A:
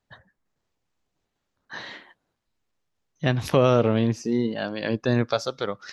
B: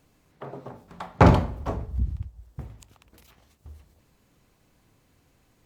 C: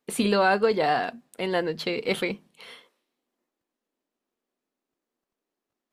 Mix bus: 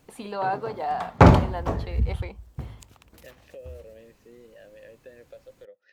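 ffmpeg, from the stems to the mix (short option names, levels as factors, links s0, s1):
-filter_complex "[0:a]asplit=3[s0][s1][s2];[s0]bandpass=f=530:t=q:w=8,volume=1[s3];[s1]bandpass=f=1840:t=q:w=8,volume=0.501[s4];[s2]bandpass=f=2480:t=q:w=8,volume=0.355[s5];[s3][s4][s5]amix=inputs=3:normalize=0,acompressor=threshold=0.01:ratio=2.5,volume=0.422[s6];[1:a]volume=1.33[s7];[2:a]equalizer=f=840:w=1.3:g=15,volume=0.158[s8];[s6][s7][s8]amix=inputs=3:normalize=0"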